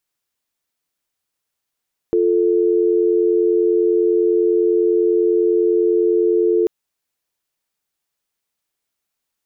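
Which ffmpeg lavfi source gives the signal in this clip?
-f lavfi -i "aevalsrc='0.168*(sin(2*PI*350*t)+sin(2*PI*440*t))':d=4.54:s=44100"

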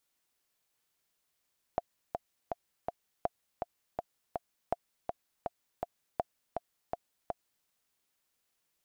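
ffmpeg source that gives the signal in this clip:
-f lavfi -i "aevalsrc='pow(10,(-16-4.5*gte(mod(t,4*60/163),60/163))/20)*sin(2*PI*696*mod(t,60/163))*exp(-6.91*mod(t,60/163)/0.03)':d=5.88:s=44100"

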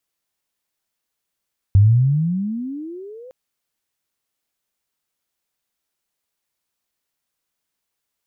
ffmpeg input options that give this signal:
-f lavfi -i "aevalsrc='pow(10,(-7-29.5*t/1.56)/20)*sin(2*PI*95.4*1.56/(29.5*log(2)/12)*(exp(29.5*log(2)/12*t/1.56)-1))':d=1.56:s=44100"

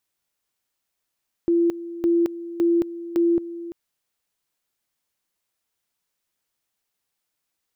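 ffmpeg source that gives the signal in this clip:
-f lavfi -i "aevalsrc='pow(10,(-15.5-15*gte(mod(t,0.56),0.22))/20)*sin(2*PI*340*t)':d=2.24:s=44100"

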